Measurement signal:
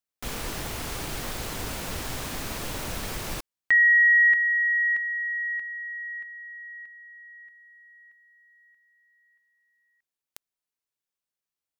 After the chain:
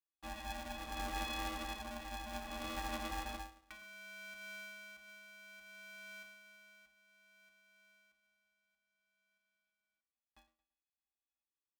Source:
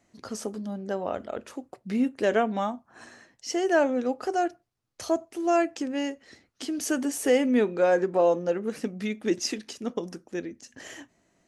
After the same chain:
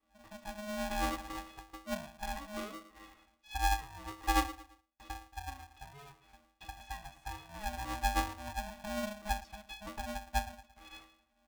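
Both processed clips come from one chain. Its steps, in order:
Bessel high-pass filter 320 Hz, order 4
comb filter 5.8 ms, depth 66%
downward compressor 10 to 1, threshold −28 dBFS
rotating-speaker cabinet horn 0.6 Hz
resonances in every octave F#, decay 0.35 s
repeating echo 112 ms, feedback 37%, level −15 dB
ring modulator with a square carrier 420 Hz
level +13 dB

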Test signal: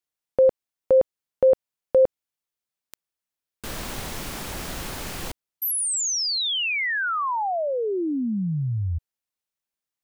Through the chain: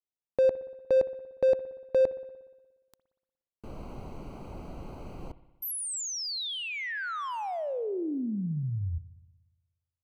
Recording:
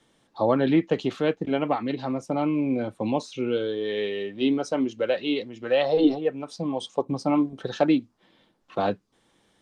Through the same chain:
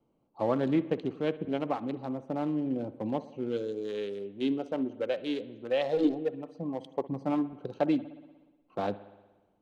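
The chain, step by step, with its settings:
adaptive Wiener filter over 25 samples
spring reverb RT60 1.2 s, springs 59 ms, chirp 25 ms, DRR 15 dB
level −6 dB

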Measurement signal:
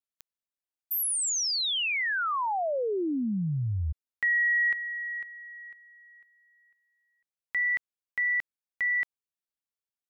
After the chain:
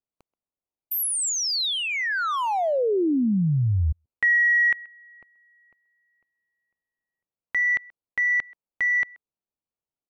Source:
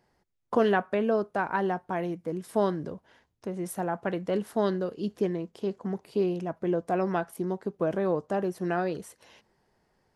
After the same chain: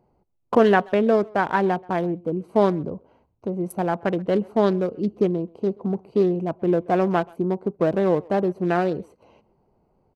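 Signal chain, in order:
adaptive Wiener filter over 25 samples
far-end echo of a speakerphone 130 ms, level −24 dB
level +7.5 dB

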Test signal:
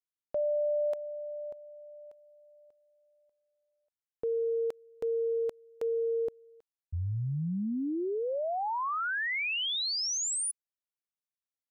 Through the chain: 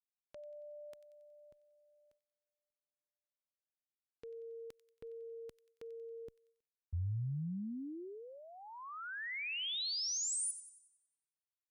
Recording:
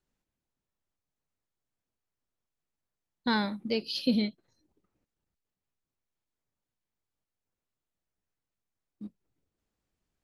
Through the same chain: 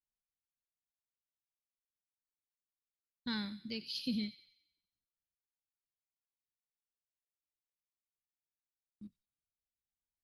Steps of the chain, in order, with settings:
noise gate −55 dBFS, range −16 dB
guitar amp tone stack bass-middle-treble 6-0-2
on a send: delay with a high-pass on its return 92 ms, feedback 48%, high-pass 2,200 Hz, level −12.5 dB
on the sum: level +9 dB

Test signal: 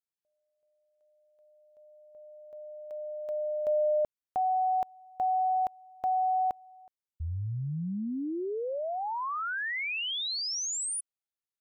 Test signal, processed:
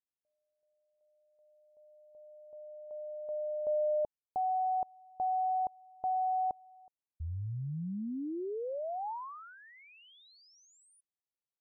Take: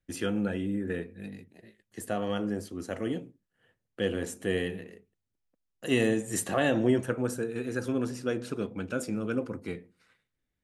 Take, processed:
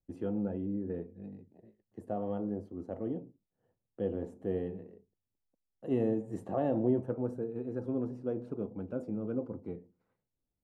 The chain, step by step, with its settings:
drawn EQ curve 860 Hz 0 dB, 1,600 Hz −18 dB, 8,100 Hz −29 dB
level −4 dB

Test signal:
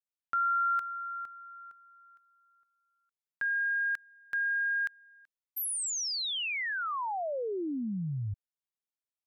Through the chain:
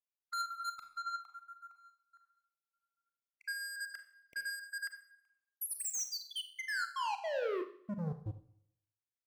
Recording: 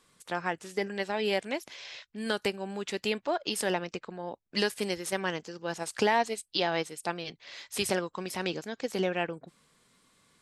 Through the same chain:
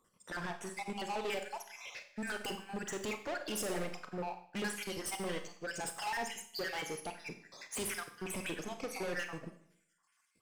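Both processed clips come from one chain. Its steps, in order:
time-frequency cells dropped at random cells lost 57%
parametric band 3,900 Hz −14.5 dB 0.32 octaves
brickwall limiter −27 dBFS
leveller curve on the samples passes 1
soft clipping −38.5 dBFS
four-comb reverb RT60 0.74 s, combs from 30 ms, DRR 4.5 dB
expander for the loud parts 1.5 to 1, over −56 dBFS
level +4 dB

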